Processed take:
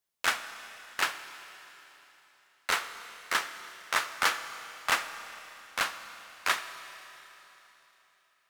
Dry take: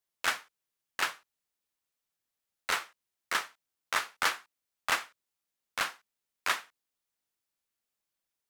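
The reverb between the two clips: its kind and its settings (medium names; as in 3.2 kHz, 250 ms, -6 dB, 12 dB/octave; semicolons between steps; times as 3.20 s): Schroeder reverb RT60 3.6 s, combs from 27 ms, DRR 10 dB; trim +2 dB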